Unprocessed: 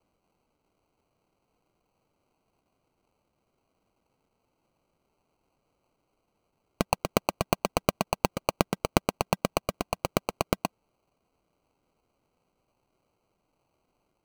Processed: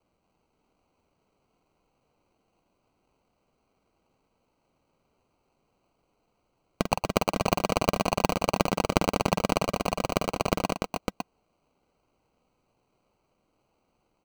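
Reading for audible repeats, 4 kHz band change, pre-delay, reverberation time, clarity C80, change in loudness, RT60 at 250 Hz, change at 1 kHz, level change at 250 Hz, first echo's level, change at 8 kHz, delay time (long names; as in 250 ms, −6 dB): 4, +2.5 dB, no reverb audible, no reverb audible, no reverb audible, +2.0 dB, no reverb audible, +2.5 dB, +3.0 dB, −8.0 dB, +0.5 dB, 46 ms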